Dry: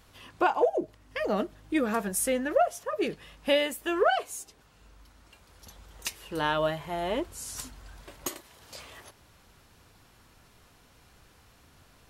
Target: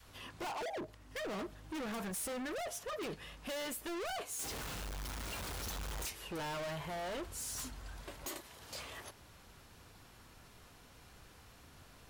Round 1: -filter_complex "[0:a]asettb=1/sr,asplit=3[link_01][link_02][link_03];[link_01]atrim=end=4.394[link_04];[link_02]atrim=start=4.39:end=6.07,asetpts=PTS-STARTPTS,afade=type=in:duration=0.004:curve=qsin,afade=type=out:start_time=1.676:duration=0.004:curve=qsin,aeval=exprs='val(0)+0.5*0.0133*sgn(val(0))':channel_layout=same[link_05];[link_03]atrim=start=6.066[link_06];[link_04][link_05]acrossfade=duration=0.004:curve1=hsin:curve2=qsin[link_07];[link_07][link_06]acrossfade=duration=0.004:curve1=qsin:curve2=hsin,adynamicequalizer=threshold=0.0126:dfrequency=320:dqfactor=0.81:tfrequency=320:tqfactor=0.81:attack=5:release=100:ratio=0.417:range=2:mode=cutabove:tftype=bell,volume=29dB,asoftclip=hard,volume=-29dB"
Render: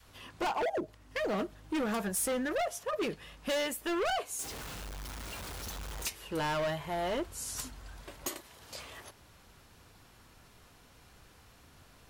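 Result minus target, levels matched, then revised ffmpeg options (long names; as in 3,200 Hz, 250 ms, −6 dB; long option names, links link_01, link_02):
gain into a clipping stage and back: distortion −5 dB
-filter_complex "[0:a]asettb=1/sr,asplit=3[link_01][link_02][link_03];[link_01]atrim=end=4.394[link_04];[link_02]atrim=start=4.39:end=6.07,asetpts=PTS-STARTPTS,afade=type=in:duration=0.004:curve=qsin,afade=type=out:start_time=1.676:duration=0.004:curve=qsin,aeval=exprs='val(0)+0.5*0.0133*sgn(val(0))':channel_layout=same[link_05];[link_03]atrim=start=6.066[link_06];[link_04][link_05]acrossfade=duration=0.004:curve1=hsin:curve2=qsin[link_07];[link_07][link_06]acrossfade=duration=0.004:curve1=qsin:curve2=hsin,adynamicequalizer=threshold=0.0126:dfrequency=320:dqfactor=0.81:tfrequency=320:tqfactor=0.81:attack=5:release=100:ratio=0.417:range=2:mode=cutabove:tftype=bell,volume=39dB,asoftclip=hard,volume=-39dB"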